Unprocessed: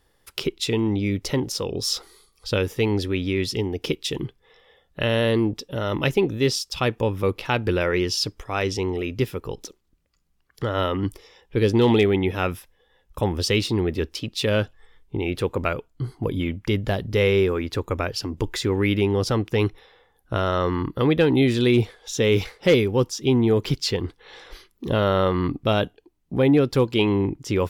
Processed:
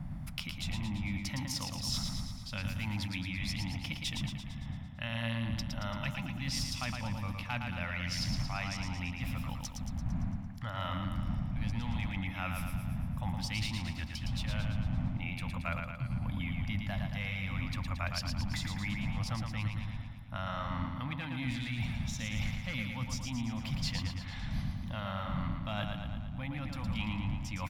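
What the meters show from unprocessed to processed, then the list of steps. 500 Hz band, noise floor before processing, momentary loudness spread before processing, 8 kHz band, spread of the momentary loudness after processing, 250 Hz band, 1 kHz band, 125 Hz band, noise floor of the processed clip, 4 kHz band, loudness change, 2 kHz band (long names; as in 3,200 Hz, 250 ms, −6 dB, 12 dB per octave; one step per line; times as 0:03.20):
−27.5 dB, −65 dBFS, 10 LU, −9.5 dB, 5 LU, −14.5 dB, −11.5 dB, −9.0 dB, −43 dBFS, −11.0 dB, −13.5 dB, −9.5 dB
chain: wind on the microphone 160 Hz −26 dBFS
in parallel at −6 dB: asymmetric clip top −14.5 dBFS
on the sum: parametric band 2,200 Hz +5.5 dB 0.49 octaves
reversed playback
downward compressor 10 to 1, threshold −23 dBFS, peak gain reduction 17 dB
reversed playback
Chebyshev band-stop filter 220–740 Hz, order 2
repeating echo 113 ms, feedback 59%, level −5 dB
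level −7.5 dB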